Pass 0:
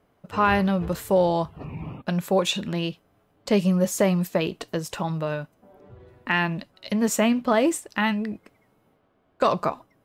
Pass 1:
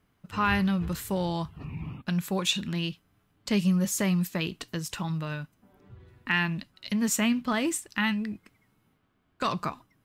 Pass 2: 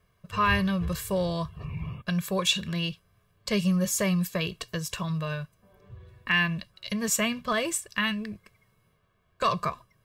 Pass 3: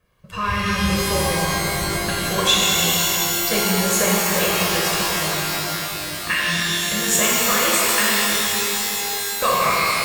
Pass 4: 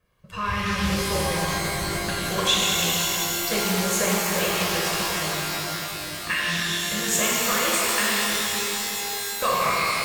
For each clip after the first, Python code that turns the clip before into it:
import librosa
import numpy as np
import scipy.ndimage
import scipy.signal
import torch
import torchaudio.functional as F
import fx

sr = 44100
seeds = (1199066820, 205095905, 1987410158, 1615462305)

y1 = fx.peak_eq(x, sr, hz=570.0, db=-14.0, octaves=1.5)
y2 = y1 + 0.83 * np.pad(y1, (int(1.8 * sr / 1000.0), 0))[:len(y1)]
y3 = fx.hpss(y2, sr, part='percussive', gain_db=9)
y3 = fx.rev_shimmer(y3, sr, seeds[0], rt60_s=3.8, semitones=12, shimmer_db=-2, drr_db=-6.0)
y3 = y3 * librosa.db_to_amplitude(-4.5)
y4 = fx.doppler_dist(y3, sr, depth_ms=0.22)
y4 = y4 * librosa.db_to_amplitude(-4.0)